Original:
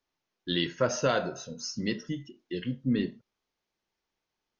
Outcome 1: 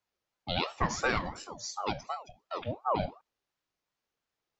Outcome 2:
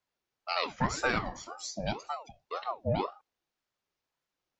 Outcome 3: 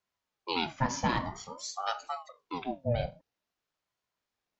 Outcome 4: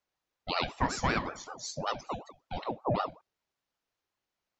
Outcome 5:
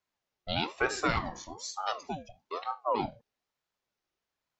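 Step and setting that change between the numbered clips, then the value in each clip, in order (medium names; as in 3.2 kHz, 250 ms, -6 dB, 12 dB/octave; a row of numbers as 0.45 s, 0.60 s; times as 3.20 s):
ring modulator with a swept carrier, at: 2.8 Hz, 1.9 Hz, 0.5 Hz, 5.3 Hz, 1.1 Hz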